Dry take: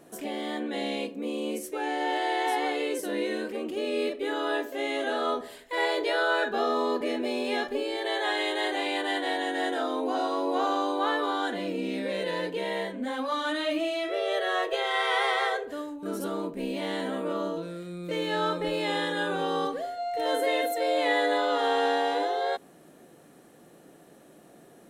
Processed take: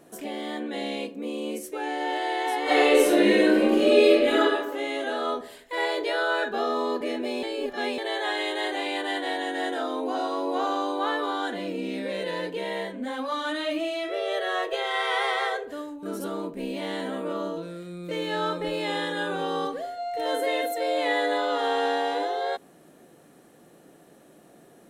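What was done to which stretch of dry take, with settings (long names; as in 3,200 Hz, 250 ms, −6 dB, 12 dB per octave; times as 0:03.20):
0:02.63–0:04.40: thrown reverb, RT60 1 s, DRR −11 dB
0:07.43–0:07.98: reverse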